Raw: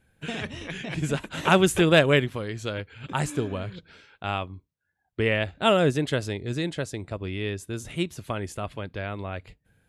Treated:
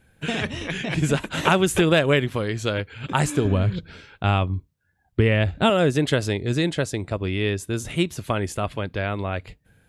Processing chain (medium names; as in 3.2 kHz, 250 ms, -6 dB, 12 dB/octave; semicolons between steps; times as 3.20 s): 3.45–5.70 s: bass shelf 220 Hz +11 dB; compression 6:1, threshold -21 dBFS, peak gain reduction 8.5 dB; trim +6.5 dB